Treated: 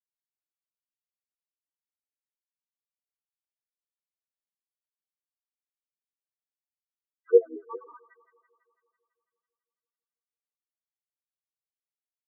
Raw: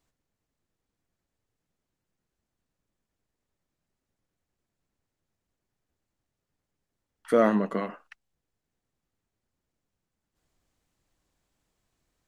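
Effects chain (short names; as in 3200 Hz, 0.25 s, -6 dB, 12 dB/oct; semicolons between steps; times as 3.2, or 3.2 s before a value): gate -51 dBFS, range -46 dB; comb 2.5 ms, depth 96%; loudest bins only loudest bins 1; harmoniser -4 st -6 dB; LFO high-pass sine 5.4 Hz 510–1800 Hz; on a send: thin delay 0.166 s, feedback 65%, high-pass 2400 Hz, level -5 dB; on the sum: gain +2.5 dB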